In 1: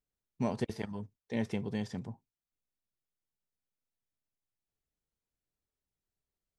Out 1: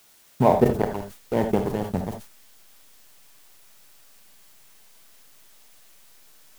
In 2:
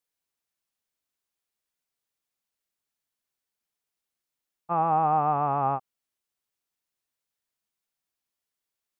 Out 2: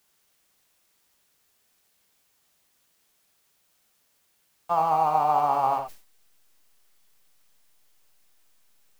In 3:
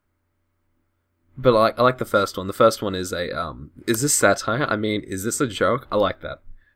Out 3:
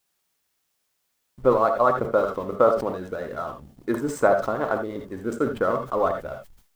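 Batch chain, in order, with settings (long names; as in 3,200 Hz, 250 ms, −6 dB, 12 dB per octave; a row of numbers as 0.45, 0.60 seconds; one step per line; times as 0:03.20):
drawn EQ curve 310 Hz 0 dB, 870 Hz +7 dB, 3,300 Hz −18 dB
harmonic and percussive parts rebalanced harmonic −11 dB
background noise blue −60 dBFS
slack as between gear wheels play −37.5 dBFS
bit-depth reduction 12 bits, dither triangular
reverb whose tail is shaped and stops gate 100 ms rising, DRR 6.5 dB
level that may fall only so fast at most 120 dB per second
loudness normalisation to −24 LKFS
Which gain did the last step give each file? +15.5, +3.0, −3.0 decibels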